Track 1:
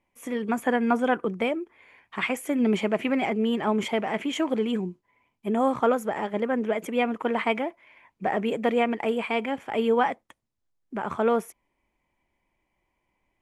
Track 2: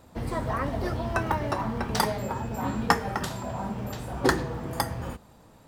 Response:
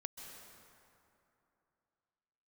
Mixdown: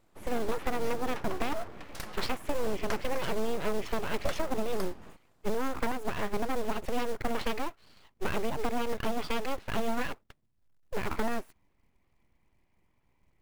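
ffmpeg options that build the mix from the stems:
-filter_complex "[0:a]bass=frequency=250:gain=12,treble=frequency=4000:gain=-11,acompressor=threshold=-23dB:ratio=16,acrusher=bits=5:mode=log:mix=0:aa=0.000001,volume=-1dB[link_01];[1:a]volume=-13.5dB[link_02];[link_01][link_02]amix=inputs=2:normalize=0,aeval=exprs='abs(val(0))':channel_layout=same"

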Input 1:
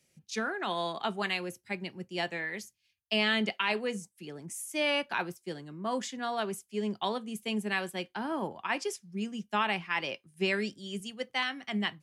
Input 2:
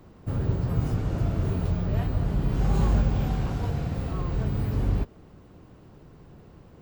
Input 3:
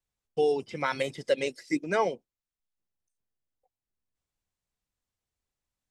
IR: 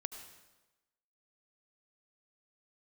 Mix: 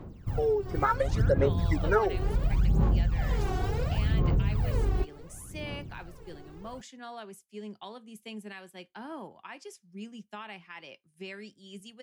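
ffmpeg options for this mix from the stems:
-filter_complex "[0:a]alimiter=level_in=1dB:limit=-24dB:level=0:latency=1:release=476,volume=-1dB,adelay=800,volume=-11dB[link_01];[1:a]volume=-5.5dB[link_02];[2:a]highshelf=frequency=1900:width_type=q:width=3:gain=-9.5,volume=2dB[link_03];[link_02][link_03]amix=inputs=2:normalize=0,aphaser=in_gain=1:out_gain=1:delay=2.7:decay=0.78:speed=0.7:type=sinusoidal,acompressor=threshold=-26dB:ratio=5,volume=0dB[link_04];[link_01][link_04]amix=inputs=2:normalize=0,dynaudnorm=framelen=230:gausssize=7:maxgain=4dB"

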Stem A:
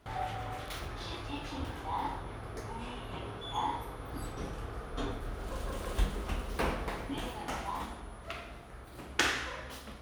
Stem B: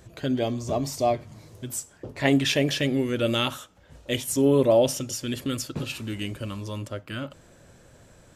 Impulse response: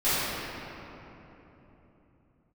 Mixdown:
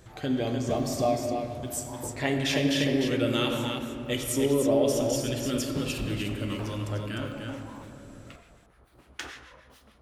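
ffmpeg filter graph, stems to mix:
-filter_complex "[0:a]acrossover=split=1200[link_01][link_02];[link_01]aeval=exprs='val(0)*(1-0.7/2+0.7/2*cos(2*PI*6.8*n/s))':channel_layout=same[link_03];[link_02]aeval=exprs='val(0)*(1-0.7/2-0.7/2*cos(2*PI*6.8*n/s))':channel_layout=same[link_04];[link_03][link_04]amix=inputs=2:normalize=0,volume=-7.5dB[link_05];[1:a]acompressor=threshold=-24dB:ratio=2,volume=-3dB,asplit=3[link_06][link_07][link_08];[link_07]volume=-18dB[link_09];[link_08]volume=-4.5dB[link_10];[2:a]atrim=start_sample=2205[link_11];[link_09][link_11]afir=irnorm=-1:irlink=0[link_12];[link_10]aecho=0:1:302:1[link_13];[link_05][link_06][link_12][link_13]amix=inputs=4:normalize=0"

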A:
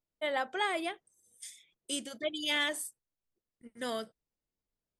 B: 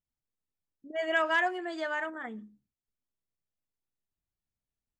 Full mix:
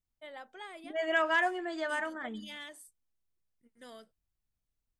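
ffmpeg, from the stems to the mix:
ffmpeg -i stem1.wav -i stem2.wav -filter_complex "[0:a]volume=-14.5dB[link_01];[1:a]lowshelf=frequency=88:gain=11,volume=-1dB[link_02];[link_01][link_02]amix=inputs=2:normalize=0" out.wav

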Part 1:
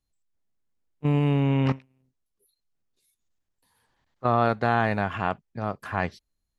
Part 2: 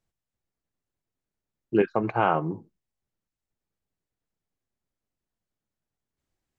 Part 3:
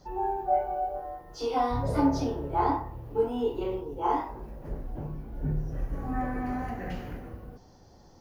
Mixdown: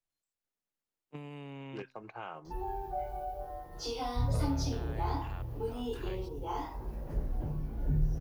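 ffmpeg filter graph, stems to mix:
ffmpeg -i stem1.wav -i stem2.wav -i stem3.wav -filter_complex "[0:a]highpass=frequency=420:poles=1,acompressor=threshold=-32dB:ratio=6,adelay=100,volume=-5dB[link_01];[1:a]equalizer=frequency=120:width_type=o:width=2.8:gain=-11,volume=-10dB[link_02];[2:a]adelay=2450,volume=3dB[link_03];[link_01][link_02][link_03]amix=inputs=3:normalize=0,acrossover=split=140|3000[link_04][link_05][link_06];[link_05]acompressor=threshold=-47dB:ratio=2[link_07];[link_04][link_07][link_06]amix=inputs=3:normalize=0" out.wav

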